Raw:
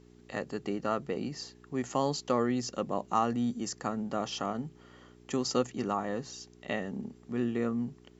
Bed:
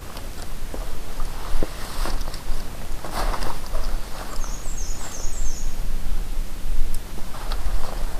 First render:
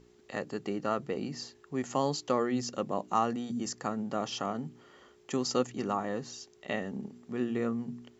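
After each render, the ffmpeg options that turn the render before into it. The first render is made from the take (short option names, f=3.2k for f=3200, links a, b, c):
-af "bandreject=f=60:t=h:w=4,bandreject=f=120:t=h:w=4,bandreject=f=180:t=h:w=4,bandreject=f=240:t=h:w=4,bandreject=f=300:t=h:w=4"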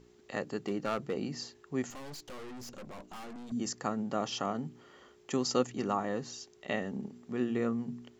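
-filter_complex "[0:a]asettb=1/sr,asplit=3[a][b][c];[a]atrim=end=0.614[d];[b]atrim=start=0.61:end=1.13,asetpts=PTS-STARTPTS,afade=t=in:d=0.004:c=qsin,afade=t=out:st=0.516:d=0.004:c=qsin,asoftclip=type=hard:threshold=-26dB[e];[c]atrim=start=1.126[f];[d][e]acrossfade=d=0.004:c1=hsin:c2=qsin[g];[g][f]acrossfade=d=0.004:c1=qsin:c2=hsin,asettb=1/sr,asplit=3[h][i][j];[h]atrim=end=1.904[k];[i]atrim=start=1.9:end=3.52,asetpts=PTS-STARTPTS,afade=t=in:d=0.004:c=qsin,afade=t=out:st=1.616:d=0.004:c=qsin,aeval=exprs='(tanh(158*val(0)+0.6)-tanh(0.6))/158':c=same[l];[j]atrim=start=3.516[m];[k][l]acrossfade=d=0.004:c1=hsin:c2=qsin[n];[n][m]acrossfade=d=0.004:c1=qsin:c2=hsin"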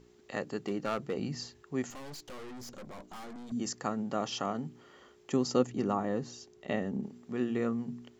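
-filter_complex "[0:a]asplit=3[a][b][c];[a]afade=t=out:st=1.18:d=0.02[d];[b]asubboost=boost=5:cutoff=180,afade=t=in:st=1.18:d=0.02,afade=t=out:st=1.62:d=0.02[e];[c]afade=t=in:st=1.62:d=0.02[f];[d][e][f]amix=inputs=3:normalize=0,asettb=1/sr,asplit=3[g][h][i];[g]atrim=end=2.534[j];[h]atrim=start=2.53:end=3.49,asetpts=PTS-STARTPTS,afade=t=in:d=0.004:c=qsin,afade=t=out:st=0.956:d=0.004:c=qsin,bandreject=f=2.7k:w=12[k];[i]atrim=start=3.486[l];[j][k]acrossfade=d=0.004:c1=hsin:c2=qsin[m];[m][l]acrossfade=d=0.004:c1=qsin:c2=hsin,asettb=1/sr,asplit=3[n][o][p];[n]atrim=end=5.304[q];[o]atrim=start=5.3:end=7.04,asetpts=PTS-STARTPTS,afade=t=in:d=0.004:c=qsin,afade=t=out:st=1.736:d=0.004:c=qsin,tiltshelf=f=730:g=4[r];[p]atrim=start=7.036[s];[q][r]acrossfade=d=0.004:c1=hsin:c2=qsin[t];[t][s]acrossfade=d=0.004:c1=qsin:c2=hsin"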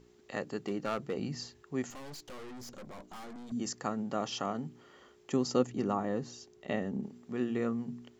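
-af "volume=-1dB"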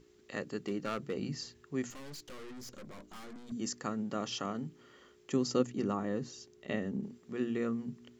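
-af "equalizer=f=780:t=o:w=0.8:g=-7.5,bandreject=f=60:t=h:w=6,bandreject=f=120:t=h:w=6,bandreject=f=180:t=h:w=6,bandreject=f=240:t=h:w=6"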